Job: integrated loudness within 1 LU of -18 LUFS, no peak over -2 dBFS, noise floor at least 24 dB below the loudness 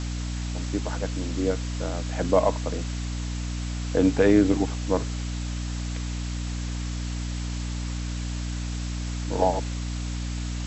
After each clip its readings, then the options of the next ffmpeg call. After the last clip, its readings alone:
hum 60 Hz; harmonics up to 300 Hz; hum level -28 dBFS; noise floor -31 dBFS; noise floor target -52 dBFS; loudness -27.5 LUFS; peak -6.5 dBFS; loudness target -18.0 LUFS
-> -af "bandreject=f=60:t=h:w=4,bandreject=f=120:t=h:w=4,bandreject=f=180:t=h:w=4,bandreject=f=240:t=h:w=4,bandreject=f=300:t=h:w=4"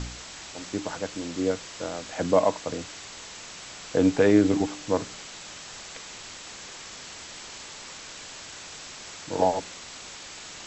hum none; noise floor -42 dBFS; noise floor target -53 dBFS
-> -af "afftdn=nr=11:nf=-42"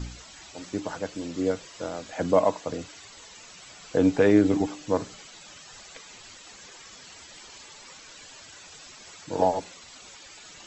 noise floor -48 dBFS; noise floor target -50 dBFS
-> -af "afftdn=nr=6:nf=-48"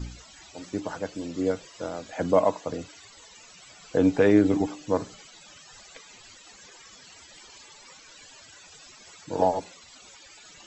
noise floor -51 dBFS; loudness -26.0 LUFS; peak -7.5 dBFS; loudness target -18.0 LUFS
-> -af "volume=8dB,alimiter=limit=-2dB:level=0:latency=1"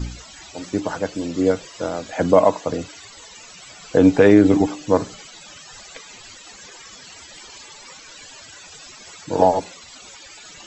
loudness -18.5 LUFS; peak -2.0 dBFS; noise floor -43 dBFS

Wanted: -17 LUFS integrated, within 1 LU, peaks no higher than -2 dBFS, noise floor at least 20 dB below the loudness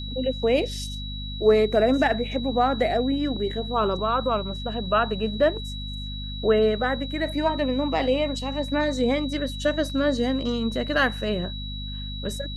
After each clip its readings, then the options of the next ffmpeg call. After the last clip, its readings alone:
hum 50 Hz; harmonics up to 250 Hz; hum level -31 dBFS; steady tone 3900 Hz; tone level -36 dBFS; loudness -24.5 LUFS; peak -7.5 dBFS; loudness target -17.0 LUFS
-> -af "bandreject=f=50:t=h:w=6,bandreject=f=100:t=h:w=6,bandreject=f=150:t=h:w=6,bandreject=f=200:t=h:w=6,bandreject=f=250:t=h:w=6"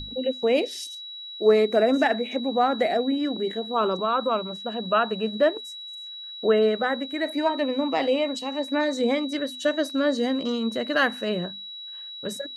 hum none; steady tone 3900 Hz; tone level -36 dBFS
-> -af "bandreject=f=3.9k:w=30"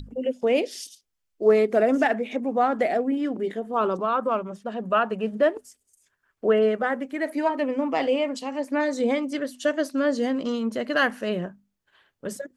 steady tone none; loudness -24.5 LUFS; peak -8.0 dBFS; loudness target -17.0 LUFS
-> -af "volume=7.5dB,alimiter=limit=-2dB:level=0:latency=1"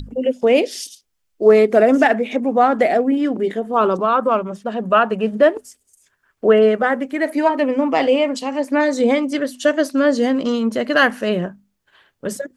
loudness -17.0 LUFS; peak -2.0 dBFS; noise floor -70 dBFS

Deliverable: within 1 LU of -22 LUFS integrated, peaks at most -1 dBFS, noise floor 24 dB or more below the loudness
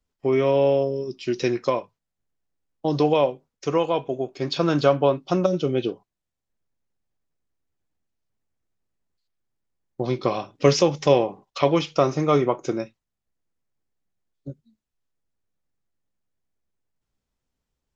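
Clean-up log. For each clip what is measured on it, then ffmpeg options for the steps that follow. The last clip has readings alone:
loudness -23.0 LUFS; peak -3.5 dBFS; loudness target -22.0 LUFS
-> -af "volume=1dB"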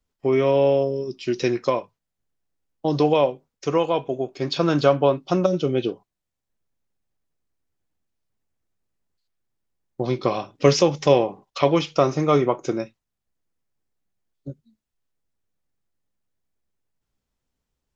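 loudness -22.0 LUFS; peak -2.5 dBFS; noise floor -82 dBFS

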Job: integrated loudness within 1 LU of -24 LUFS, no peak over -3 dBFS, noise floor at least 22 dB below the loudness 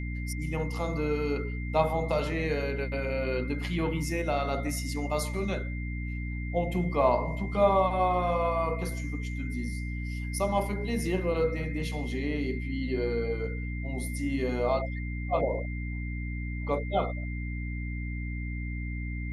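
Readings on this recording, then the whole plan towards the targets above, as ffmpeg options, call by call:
hum 60 Hz; harmonics up to 300 Hz; hum level -31 dBFS; steady tone 2100 Hz; tone level -42 dBFS; loudness -30.5 LUFS; peak -10.5 dBFS; loudness target -24.0 LUFS
-> -af "bandreject=f=60:t=h:w=6,bandreject=f=120:t=h:w=6,bandreject=f=180:t=h:w=6,bandreject=f=240:t=h:w=6,bandreject=f=300:t=h:w=6"
-af "bandreject=f=2.1k:w=30"
-af "volume=6.5dB"

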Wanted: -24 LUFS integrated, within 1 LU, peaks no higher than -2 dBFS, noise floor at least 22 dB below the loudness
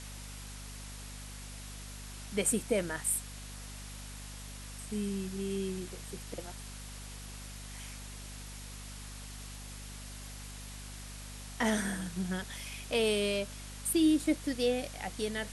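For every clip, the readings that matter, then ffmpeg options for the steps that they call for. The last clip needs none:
hum 50 Hz; harmonics up to 250 Hz; hum level -44 dBFS; noise floor -45 dBFS; noise floor target -58 dBFS; loudness -36.0 LUFS; peak -17.0 dBFS; loudness target -24.0 LUFS
-> -af "bandreject=f=50:t=h:w=6,bandreject=f=100:t=h:w=6,bandreject=f=150:t=h:w=6,bandreject=f=200:t=h:w=6,bandreject=f=250:t=h:w=6"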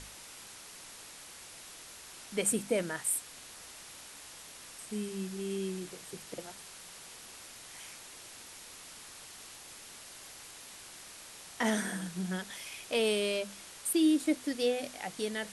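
hum none; noise floor -50 dBFS; noise floor target -56 dBFS
-> -af "afftdn=nr=6:nf=-50"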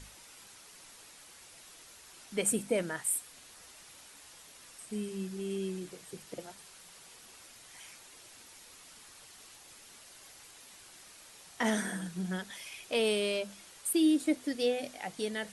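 noise floor -55 dBFS; loudness -33.0 LUFS; peak -17.0 dBFS; loudness target -24.0 LUFS
-> -af "volume=9dB"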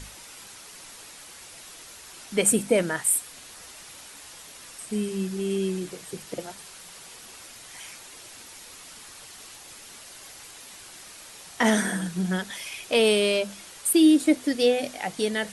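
loudness -24.0 LUFS; peak -8.0 dBFS; noise floor -46 dBFS

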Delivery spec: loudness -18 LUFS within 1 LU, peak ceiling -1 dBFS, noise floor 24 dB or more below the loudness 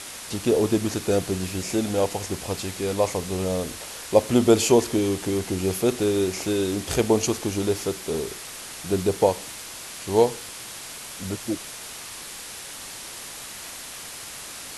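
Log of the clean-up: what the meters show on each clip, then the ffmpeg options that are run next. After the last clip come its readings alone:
noise floor -38 dBFS; noise floor target -50 dBFS; loudness -25.5 LUFS; peak -2.5 dBFS; loudness target -18.0 LUFS
-> -af "afftdn=nr=12:nf=-38"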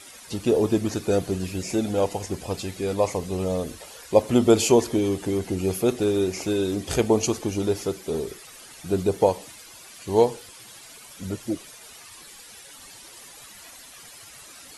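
noise floor -46 dBFS; noise floor target -49 dBFS
-> -af "afftdn=nr=6:nf=-46"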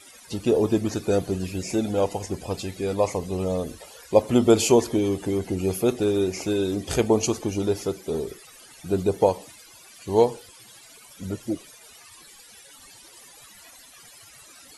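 noise floor -49 dBFS; loudness -24.5 LUFS; peak -3.0 dBFS; loudness target -18.0 LUFS
-> -af "volume=6.5dB,alimiter=limit=-1dB:level=0:latency=1"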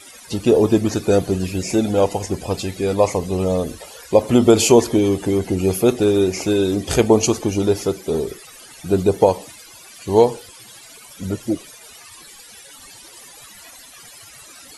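loudness -18.5 LUFS; peak -1.0 dBFS; noise floor -43 dBFS

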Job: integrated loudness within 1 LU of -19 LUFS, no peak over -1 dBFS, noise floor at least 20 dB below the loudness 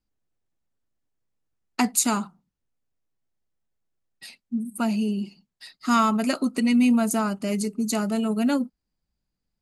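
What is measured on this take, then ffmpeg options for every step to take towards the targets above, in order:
loudness -24.0 LUFS; peak -7.0 dBFS; loudness target -19.0 LUFS
-> -af "volume=5dB"

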